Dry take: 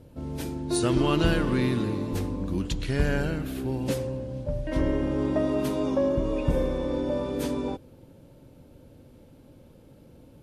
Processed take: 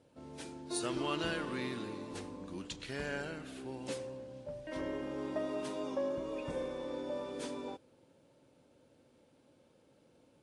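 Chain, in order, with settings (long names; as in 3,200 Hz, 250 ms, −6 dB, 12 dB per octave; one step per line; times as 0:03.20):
high-pass filter 550 Hz 6 dB per octave
level −7 dB
AAC 48 kbit/s 22,050 Hz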